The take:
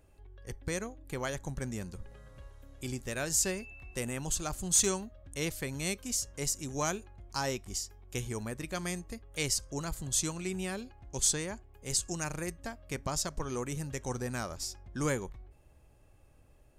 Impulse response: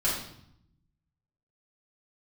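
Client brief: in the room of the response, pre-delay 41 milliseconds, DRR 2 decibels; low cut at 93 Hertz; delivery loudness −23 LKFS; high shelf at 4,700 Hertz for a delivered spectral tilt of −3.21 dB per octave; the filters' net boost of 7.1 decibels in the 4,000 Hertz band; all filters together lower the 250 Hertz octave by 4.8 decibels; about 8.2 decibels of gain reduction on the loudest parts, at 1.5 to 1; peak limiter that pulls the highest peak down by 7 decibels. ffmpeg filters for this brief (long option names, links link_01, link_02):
-filter_complex "[0:a]highpass=93,equalizer=frequency=250:width_type=o:gain=-7,equalizer=frequency=4000:width_type=o:gain=4.5,highshelf=frequency=4700:gain=8,acompressor=threshold=-38dB:ratio=1.5,alimiter=limit=-22.5dB:level=0:latency=1,asplit=2[link_01][link_02];[1:a]atrim=start_sample=2205,adelay=41[link_03];[link_02][link_03]afir=irnorm=-1:irlink=0,volume=-11.5dB[link_04];[link_01][link_04]amix=inputs=2:normalize=0,volume=12dB"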